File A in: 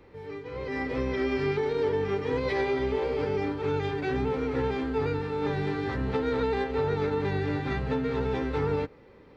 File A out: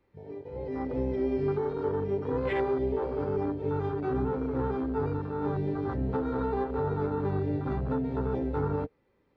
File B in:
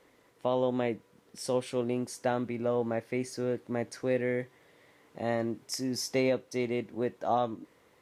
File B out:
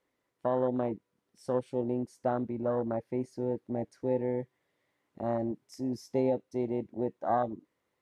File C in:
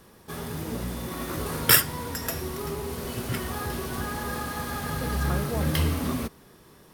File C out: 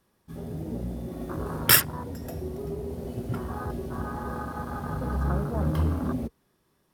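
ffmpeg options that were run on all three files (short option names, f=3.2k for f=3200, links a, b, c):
-af "afwtdn=0.0282,bandreject=f=460:w=12"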